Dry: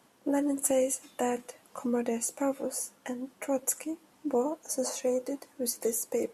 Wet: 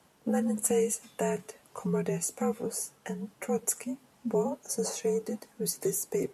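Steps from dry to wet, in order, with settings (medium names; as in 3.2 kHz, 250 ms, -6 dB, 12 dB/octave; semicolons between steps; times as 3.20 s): high-pass 110 Hz; frequency shift -63 Hz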